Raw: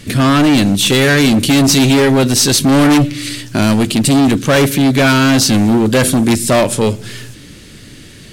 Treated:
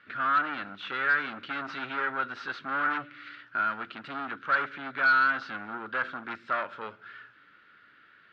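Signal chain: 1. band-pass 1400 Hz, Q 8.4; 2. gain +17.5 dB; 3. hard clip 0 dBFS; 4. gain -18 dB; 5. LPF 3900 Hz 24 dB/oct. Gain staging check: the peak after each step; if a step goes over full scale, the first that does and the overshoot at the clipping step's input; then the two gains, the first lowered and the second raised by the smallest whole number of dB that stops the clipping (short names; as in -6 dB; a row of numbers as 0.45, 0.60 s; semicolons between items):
-9.5, +8.0, 0.0, -18.0, -16.5 dBFS; step 2, 8.0 dB; step 2 +9.5 dB, step 4 -10 dB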